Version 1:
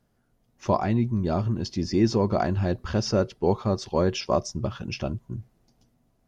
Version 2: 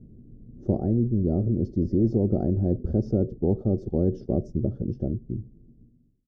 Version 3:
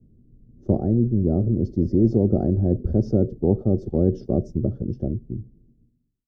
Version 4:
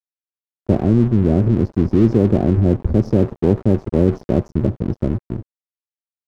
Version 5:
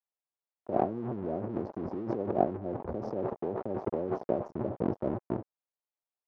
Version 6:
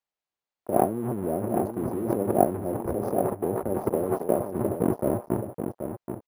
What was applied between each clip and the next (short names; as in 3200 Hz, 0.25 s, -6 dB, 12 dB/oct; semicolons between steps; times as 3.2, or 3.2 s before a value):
ending faded out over 1.92 s; inverse Chebyshev low-pass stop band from 940 Hz, stop band 50 dB; spectral compressor 2:1
three-band expander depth 40%; gain +3.5 dB
in parallel at +3 dB: limiter -13.5 dBFS, peak gain reduction 7 dB; on the sum: crossover distortion -29 dBFS
negative-ratio compressor -21 dBFS, ratio -1; band-pass 740 Hz, Q 1.5
echo 0.779 s -7.5 dB; careless resampling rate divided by 4×, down filtered, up hold; gain +6 dB